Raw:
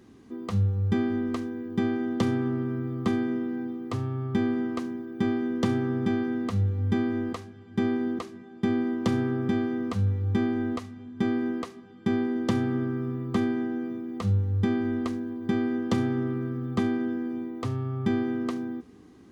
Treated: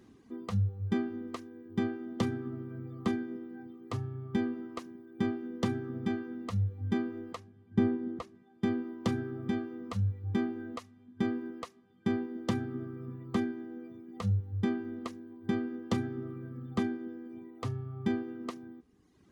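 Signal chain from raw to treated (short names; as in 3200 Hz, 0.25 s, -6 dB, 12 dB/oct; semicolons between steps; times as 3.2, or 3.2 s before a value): reverb removal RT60 1.3 s; 7.36–8.35 tilt -2 dB/oct; gain -4 dB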